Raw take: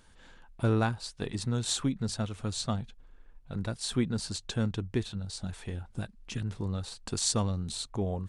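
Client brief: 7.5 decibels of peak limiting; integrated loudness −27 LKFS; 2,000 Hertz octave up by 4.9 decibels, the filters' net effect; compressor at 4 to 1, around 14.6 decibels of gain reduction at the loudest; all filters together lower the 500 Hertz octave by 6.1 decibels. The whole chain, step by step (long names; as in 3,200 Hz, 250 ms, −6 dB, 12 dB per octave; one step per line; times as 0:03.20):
parametric band 500 Hz −8.5 dB
parametric band 2,000 Hz +8 dB
downward compressor 4 to 1, threshold −41 dBFS
level +18.5 dB
brickwall limiter −15.5 dBFS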